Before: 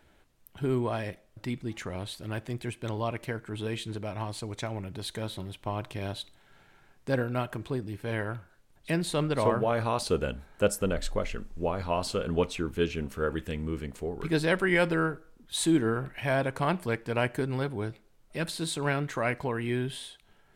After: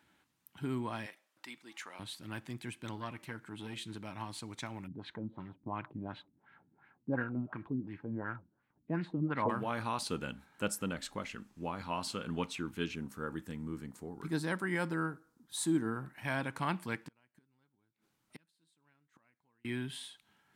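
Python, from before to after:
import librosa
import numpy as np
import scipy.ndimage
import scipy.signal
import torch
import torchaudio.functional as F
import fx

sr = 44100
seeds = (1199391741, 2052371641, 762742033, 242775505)

y = fx.highpass(x, sr, hz=570.0, slope=12, at=(1.06, 1.99))
y = fx.transformer_sat(y, sr, knee_hz=500.0, at=(2.96, 3.82))
y = fx.filter_lfo_lowpass(y, sr, shape='sine', hz=2.8, low_hz=230.0, high_hz=2200.0, q=2.1, at=(4.86, 9.48), fade=0.02)
y = fx.peak_eq(y, sr, hz=2700.0, db=-10.5, octaves=1.1, at=(12.95, 16.25))
y = fx.gate_flip(y, sr, shuts_db=-28.0, range_db=-37, at=(17.07, 19.65))
y = scipy.signal.sosfilt(scipy.signal.butter(2, 150.0, 'highpass', fs=sr, output='sos'), y)
y = fx.band_shelf(y, sr, hz=510.0, db=-9.0, octaves=1.1)
y = y * librosa.db_to_amplitude(-4.5)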